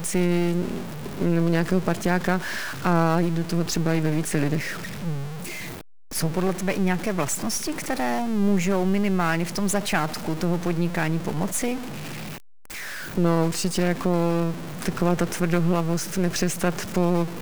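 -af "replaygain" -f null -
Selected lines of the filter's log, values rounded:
track_gain = +6.3 dB
track_peak = 0.347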